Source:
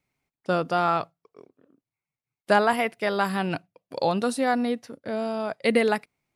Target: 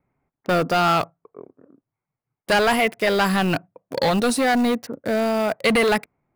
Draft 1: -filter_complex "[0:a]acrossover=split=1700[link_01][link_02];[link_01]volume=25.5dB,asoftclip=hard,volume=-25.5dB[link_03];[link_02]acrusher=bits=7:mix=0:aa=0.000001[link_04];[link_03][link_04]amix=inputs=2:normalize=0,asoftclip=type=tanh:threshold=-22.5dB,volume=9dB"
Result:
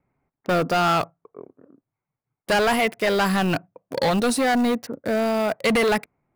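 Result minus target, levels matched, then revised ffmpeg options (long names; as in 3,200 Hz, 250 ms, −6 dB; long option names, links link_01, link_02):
soft clipping: distortion +9 dB
-filter_complex "[0:a]acrossover=split=1700[link_01][link_02];[link_01]volume=25.5dB,asoftclip=hard,volume=-25.5dB[link_03];[link_02]acrusher=bits=7:mix=0:aa=0.000001[link_04];[link_03][link_04]amix=inputs=2:normalize=0,asoftclip=type=tanh:threshold=-16dB,volume=9dB"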